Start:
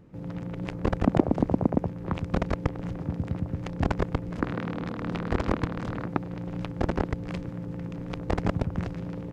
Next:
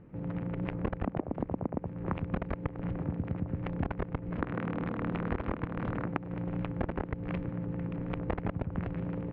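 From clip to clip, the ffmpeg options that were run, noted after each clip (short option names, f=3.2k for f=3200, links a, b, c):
-af "lowpass=f=2.7k:w=0.5412,lowpass=f=2.7k:w=1.3066,acompressor=threshold=-28dB:ratio=10"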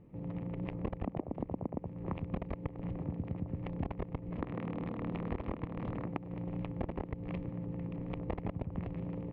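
-af "equalizer=f=1.5k:w=3.6:g=-13,volume=-4dB"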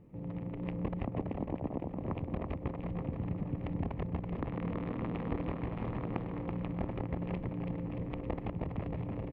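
-af "aecho=1:1:330|627|894.3|1135|1351:0.631|0.398|0.251|0.158|0.1"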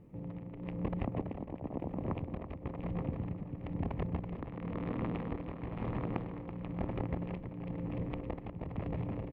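-af "tremolo=f=1:d=0.55,volume=1dB"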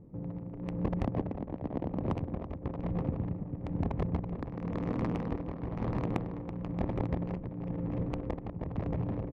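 -af "adynamicsmooth=sensitivity=6.5:basefreq=890,volume=4dB"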